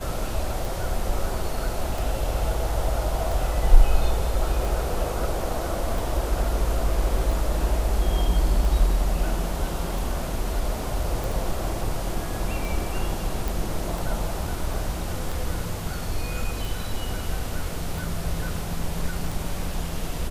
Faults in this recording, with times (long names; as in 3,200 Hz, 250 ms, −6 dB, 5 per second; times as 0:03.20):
scratch tick 45 rpm
0:11.24: click
0:13.48: click